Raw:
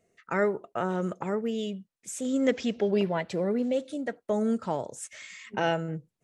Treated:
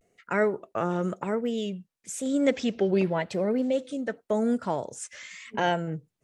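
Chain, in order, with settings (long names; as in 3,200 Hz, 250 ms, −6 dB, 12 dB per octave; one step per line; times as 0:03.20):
pitch vibrato 0.93 Hz 95 cents
level +1.5 dB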